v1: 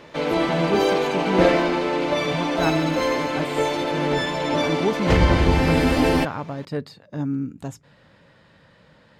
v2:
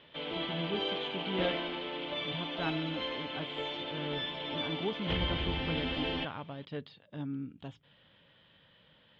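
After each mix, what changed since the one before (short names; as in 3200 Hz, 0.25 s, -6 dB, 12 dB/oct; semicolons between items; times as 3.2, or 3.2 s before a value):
background -5.0 dB; master: add ladder low-pass 3400 Hz, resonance 80%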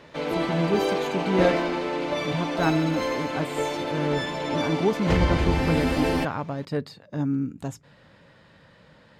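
master: remove ladder low-pass 3400 Hz, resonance 80%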